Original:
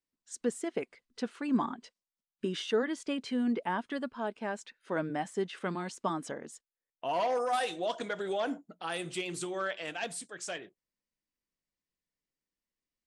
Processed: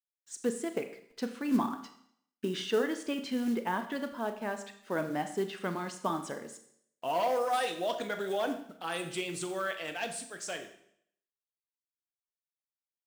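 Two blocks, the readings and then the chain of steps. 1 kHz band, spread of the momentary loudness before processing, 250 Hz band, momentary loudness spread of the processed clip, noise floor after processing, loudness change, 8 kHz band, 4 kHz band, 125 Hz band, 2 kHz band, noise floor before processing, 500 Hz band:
+0.5 dB, 9 LU, +0.5 dB, 11 LU, below −85 dBFS, +0.5 dB, +1.0 dB, +0.5 dB, 0.0 dB, +0.5 dB, below −85 dBFS, +1.0 dB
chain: log-companded quantiser 6 bits
four-comb reverb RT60 0.67 s, combs from 27 ms, DRR 8 dB

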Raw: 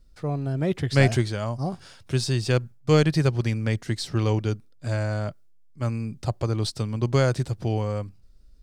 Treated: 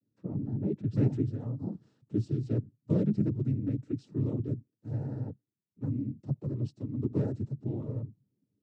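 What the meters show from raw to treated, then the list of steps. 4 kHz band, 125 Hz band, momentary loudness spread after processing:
below −30 dB, −7.5 dB, 10 LU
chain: cochlear-implant simulation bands 12
drawn EQ curve 170 Hz 0 dB, 270 Hz +6 dB, 670 Hz −13 dB, 2,100 Hz −23 dB
level −7 dB

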